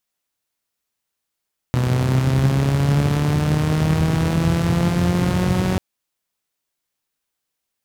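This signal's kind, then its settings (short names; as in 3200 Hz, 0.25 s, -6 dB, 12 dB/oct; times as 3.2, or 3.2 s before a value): four-cylinder engine model, changing speed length 4.04 s, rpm 3700, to 5600, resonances 90/130 Hz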